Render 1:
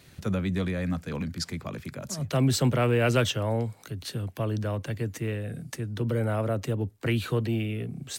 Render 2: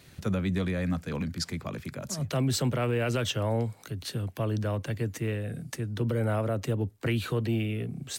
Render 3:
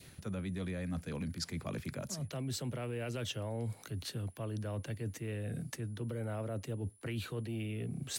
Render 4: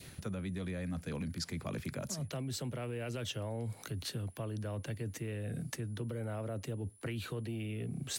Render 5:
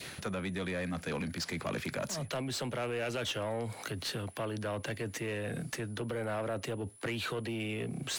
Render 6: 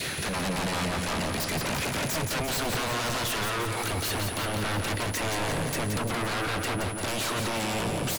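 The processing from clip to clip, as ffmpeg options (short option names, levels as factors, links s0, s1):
-af "alimiter=limit=0.119:level=0:latency=1:release=145"
-af "adynamicequalizer=threshold=0.00316:dfrequency=1200:dqfactor=1.6:tfrequency=1200:tqfactor=1.6:attack=5:release=100:ratio=0.375:range=2:mode=cutabove:tftype=bell,areverse,acompressor=threshold=0.0141:ratio=6,areverse,aeval=exprs='val(0)+0.000562*sin(2*PI*10000*n/s)':c=same,volume=1.12"
-af "acompressor=threshold=0.0112:ratio=6,volume=1.58"
-filter_complex "[0:a]asplit=2[s0][s1];[s1]highpass=f=720:p=1,volume=8.91,asoftclip=type=tanh:threshold=0.0562[s2];[s0][s2]amix=inputs=2:normalize=0,lowpass=f=4000:p=1,volume=0.501"
-af "aeval=exprs='0.0501*sin(PI/2*3.98*val(0)/0.0501)':c=same,aecho=1:1:173|346|519|692|865|1038|1211|1384:0.562|0.332|0.196|0.115|0.0681|0.0402|0.0237|0.014,volume=0.841"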